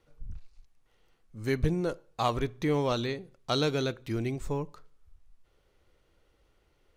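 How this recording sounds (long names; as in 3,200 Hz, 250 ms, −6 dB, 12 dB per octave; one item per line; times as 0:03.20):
background noise floor −70 dBFS
spectral slope −5.0 dB per octave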